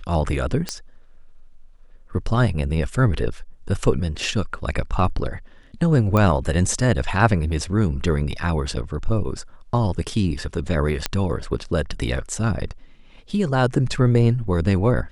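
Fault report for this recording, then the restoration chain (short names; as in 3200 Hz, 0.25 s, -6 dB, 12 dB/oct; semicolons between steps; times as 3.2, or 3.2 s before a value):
0.69 pop -10 dBFS
6.17 pop -9 dBFS
11.06 pop -5 dBFS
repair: de-click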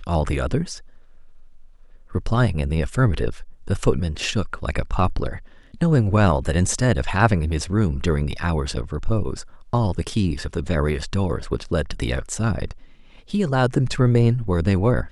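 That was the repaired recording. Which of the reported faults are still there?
none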